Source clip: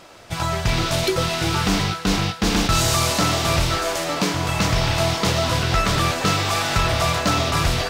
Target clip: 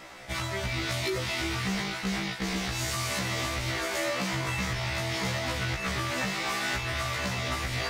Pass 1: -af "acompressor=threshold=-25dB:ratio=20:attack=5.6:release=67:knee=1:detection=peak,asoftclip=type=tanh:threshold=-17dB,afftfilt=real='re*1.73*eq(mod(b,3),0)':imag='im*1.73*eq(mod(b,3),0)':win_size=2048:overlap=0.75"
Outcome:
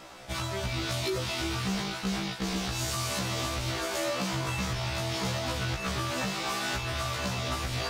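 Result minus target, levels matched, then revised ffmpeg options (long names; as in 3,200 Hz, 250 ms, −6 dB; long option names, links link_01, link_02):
2,000 Hz band −3.0 dB
-af "acompressor=threshold=-25dB:ratio=20:attack=5.6:release=67:knee=1:detection=peak,equalizer=frequency=2000:width_type=o:width=0.42:gain=8.5,asoftclip=type=tanh:threshold=-17dB,afftfilt=real='re*1.73*eq(mod(b,3),0)':imag='im*1.73*eq(mod(b,3),0)':win_size=2048:overlap=0.75"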